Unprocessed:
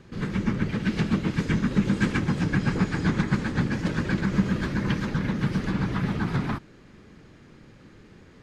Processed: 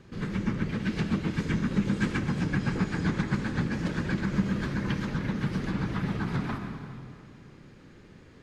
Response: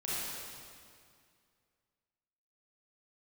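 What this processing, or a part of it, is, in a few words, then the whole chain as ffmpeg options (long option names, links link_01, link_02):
ducked reverb: -filter_complex "[0:a]asplit=3[link_01][link_02][link_03];[1:a]atrim=start_sample=2205[link_04];[link_02][link_04]afir=irnorm=-1:irlink=0[link_05];[link_03]apad=whole_len=371561[link_06];[link_05][link_06]sidechaincompress=threshold=-32dB:ratio=8:attack=16:release=121,volume=-8dB[link_07];[link_01][link_07]amix=inputs=2:normalize=0,volume=-4.5dB"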